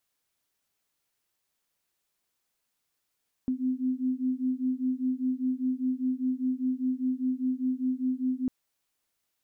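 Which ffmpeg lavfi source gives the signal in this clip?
-f lavfi -i "aevalsrc='0.0355*(sin(2*PI*254*t)+sin(2*PI*259*t))':d=5:s=44100"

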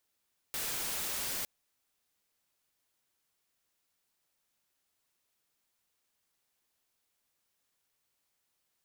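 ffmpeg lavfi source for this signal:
-f lavfi -i "anoisesrc=c=white:a=0.0274:d=0.91:r=44100:seed=1"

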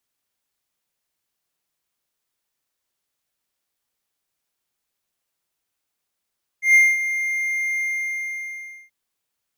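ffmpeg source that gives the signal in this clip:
-f lavfi -i "aevalsrc='0.447*(1-4*abs(mod(2110*t+0.25,1)-0.5))':d=2.28:s=44100,afade=t=in:d=0.127,afade=t=out:st=0.127:d=0.22:silence=0.251,afade=t=out:st=1.18:d=1.1"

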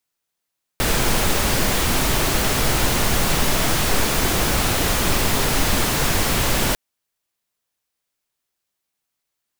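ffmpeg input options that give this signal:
-f lavfi -i "anoisesrc=c=pink:a=0.61:d=5.95:r=44100:seed=1"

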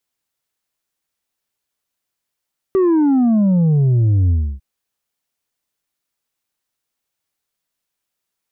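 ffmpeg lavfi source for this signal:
-f lavfi -i "aevalsrc='0.266*clip((1.85-t)/0.3,0,1)*tanh(1.58*sin(2*PI*390*1.85/log(65/390)*(exp(log(65/390)*t/1.85)-1)))/tanh(1.58)':d=1.85:s=44100"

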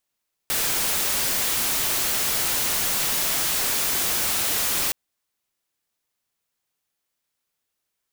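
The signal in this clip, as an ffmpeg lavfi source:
-f lavfi -i "anoisesrc=c=white:a=0.116:d=4.42:r=44100:seed=1"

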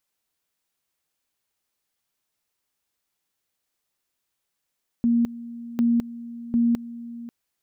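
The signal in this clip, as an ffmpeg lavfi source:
-f lavfi -i "aevalsrc='pow(10,(-16.5-17*gte(mod(t,0.75),0.21))/20)*sin(2*PI*235*t)':d=2.25:s=44100"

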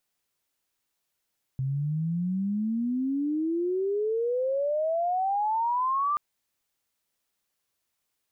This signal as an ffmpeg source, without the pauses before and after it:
-f lavfi -i "aevalsrc='pow(10,(-25.5+2.5*t/4.58)/20)*sin(2*PI*130*4.58/log(1200/130)*(exp(log(1200/130)*t/4.58)-1))':d=4.58:s=44100"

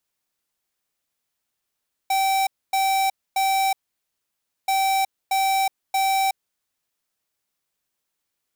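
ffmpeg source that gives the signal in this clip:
-f lavfi -i "aevalsrc='0.0944*(2*lt(mod(774*t,1),0.5)-1)*clip(min(mod(mod(t,2.58),0.63),0.37-mod(mod(t,2.58),0.63))/0.005,0,1)*lt(mod(t,2.58),1.89)':d=5.16:s=44100"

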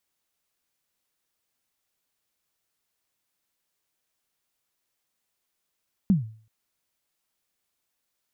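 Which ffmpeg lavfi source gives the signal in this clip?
-f lavfi -i "aevalsrc='0.224*pow(10,-3*t/0.45)*sin(2*PI*(210*0.14/log(110/210)*(exp(log(110/210)*min(t,0.14)/0.14)-1)+110*max(t-0.14,0)))':d=0.38:s=44100"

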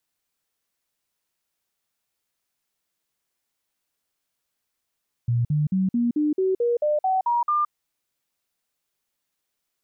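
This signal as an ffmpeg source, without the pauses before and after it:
-f lavfi -i "aevalsrc='0.119*clip(min(mod(t,0.22),0.17-mod(t,0.22))/0.005,0,1)*sin(2*PI*119*pow(2,floor(t/0.22)/3)*mod(t,0.22))':d=2.42:s=44100"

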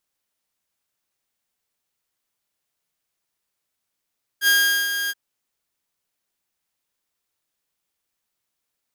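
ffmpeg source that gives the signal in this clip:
-f lavfi -i "aevalsrc='0.282*(2*mod(1620*t,1)-1)':d=0.727:s=44100,afade=t=in:d=0.065,afade=t=out:st=0.065:d=0.404:silence=0.355,afade=t=out:st=0.69:d=0.037"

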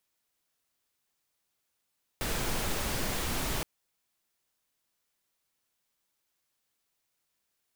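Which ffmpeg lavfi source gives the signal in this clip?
-f lavfi -i "anoisesrc=c=pink:a=0.136:d=1.42:r=44100:seed=1"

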